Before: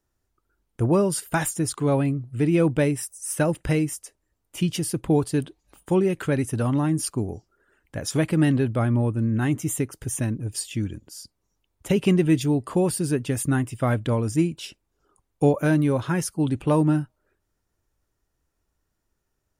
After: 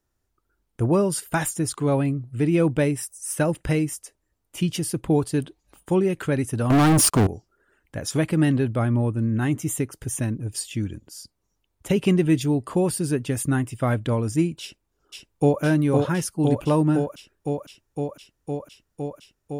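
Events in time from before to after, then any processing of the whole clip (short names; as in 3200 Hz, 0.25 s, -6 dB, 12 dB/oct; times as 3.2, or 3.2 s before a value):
6.7–7.27 sample leveller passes 5
14.61–15.62 echo throw 0.51 s, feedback 85%, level -3.5 dB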